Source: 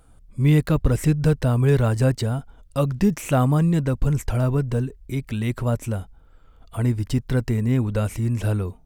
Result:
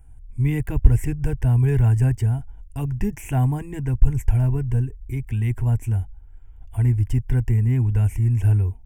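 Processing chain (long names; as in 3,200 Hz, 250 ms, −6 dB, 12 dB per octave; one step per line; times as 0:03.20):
low shelf with overshoot 200 Hz +12 dB, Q 1.5
phaser with its sweep stopped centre 830 Hz, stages 8
level −3 dB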